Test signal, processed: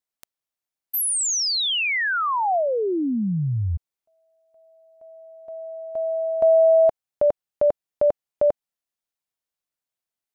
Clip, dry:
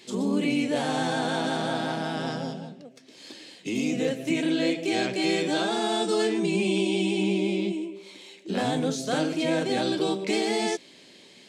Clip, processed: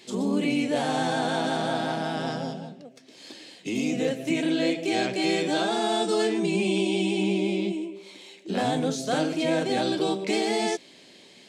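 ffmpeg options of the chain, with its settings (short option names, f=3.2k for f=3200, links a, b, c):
-af "equalizer=f=710:w=3.3:g=3"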